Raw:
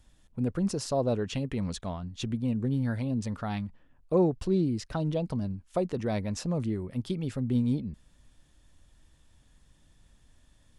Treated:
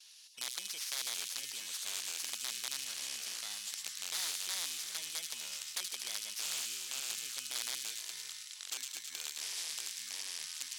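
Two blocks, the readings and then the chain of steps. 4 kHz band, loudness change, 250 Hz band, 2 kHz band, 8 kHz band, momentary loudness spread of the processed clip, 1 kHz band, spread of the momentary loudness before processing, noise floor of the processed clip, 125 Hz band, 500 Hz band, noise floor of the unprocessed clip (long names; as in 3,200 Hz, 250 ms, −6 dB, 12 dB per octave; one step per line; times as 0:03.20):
+9.0 dB, −7.0 dB, −37.5 dB, +3.0 dB, +11.5 dB, 5 LU, −12.5 dB, 8 LU, −49 dBFS, below −40 dB, −28.5 dB, −62 dBFS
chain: samples in bit-reversed order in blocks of 16 samples
noise gate with hold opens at −55 dBFS
in parallel at +1 dB: downward compressor 6 to 1, threshold −38 dBFS, peak gain reduction 17.5 dB
on the sum: wrap-around overflow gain 18.5 dB
on a send: delay with a high-pass on its return 76 ms, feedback 61%, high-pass 4,500 Hz, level −4.5 dB
on the sum: delay with pitch and tempo change per echo 564 ms, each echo −6 semitones, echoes 3, each echo −6 dB
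flat-topped band-pass 4,700 Hz, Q 1.1
every bin compressed towards the loudest bin 2 to 1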